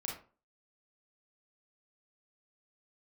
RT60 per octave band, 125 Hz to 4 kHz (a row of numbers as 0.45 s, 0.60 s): 0.40 s, 0.40 s, 0.40 s, 0.35 s, 0.30 s, 0.25 s